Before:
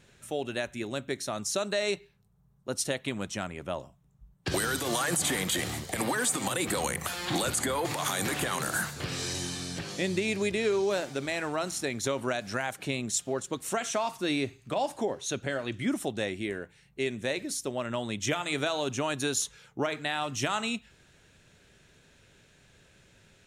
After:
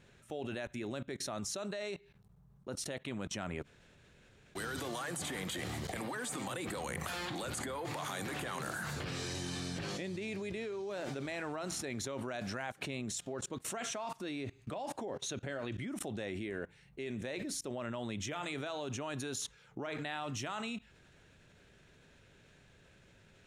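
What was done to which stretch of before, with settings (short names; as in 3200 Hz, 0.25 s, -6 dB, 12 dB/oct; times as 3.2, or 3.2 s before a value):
3.64–4.58 room tone, crossfade 0.06 s
whole clip: high shelf 4400 Hz -8.5 dB; level quantiser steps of 23 dB; gain +6.5 dB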